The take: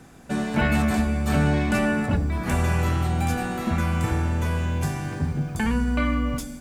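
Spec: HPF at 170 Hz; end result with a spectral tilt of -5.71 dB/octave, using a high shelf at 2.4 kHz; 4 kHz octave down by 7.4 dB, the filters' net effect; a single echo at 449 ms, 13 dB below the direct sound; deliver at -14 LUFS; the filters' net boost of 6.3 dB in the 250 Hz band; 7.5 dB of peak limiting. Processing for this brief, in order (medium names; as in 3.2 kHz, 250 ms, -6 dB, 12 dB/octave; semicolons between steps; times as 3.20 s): high-pass 170 Hz; peaking EQ 250 Hz +9 dB; treble shelf 2.4 kHz -6 dB; peaking EQ 4 kHz -5 dB; peak limiter -14 dBFS; delay 449 ms -13 dB; trim +9.5 dB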